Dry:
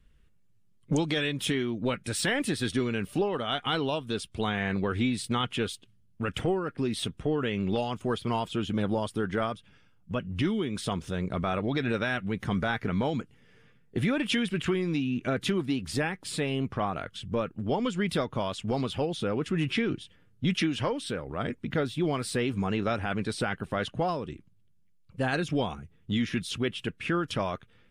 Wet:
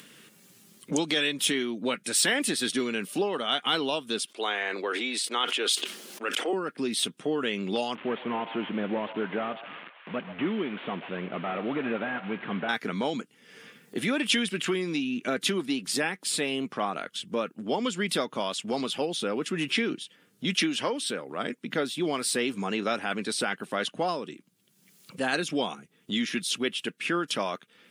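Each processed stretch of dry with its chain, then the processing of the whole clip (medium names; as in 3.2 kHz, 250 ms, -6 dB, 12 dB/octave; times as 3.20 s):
4.25–6.53 s: high-pass 340 Hz 24 dB/octave + treble shelf 7.3 kHz -10 dB + decay stretcher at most 31 dB/s
7.95–12.69 s: one-bit delta coder 16 kbps, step -38 dBFS + repeats whose band climbs or falls 132 ms, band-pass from 760 Hz, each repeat 0.7 oct, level -10 dB
whole clip: high-pass 200 Hz 24 dB/octave; treble shelf 3 kHz +10 dB; upward compressor, threshold -36 dBFS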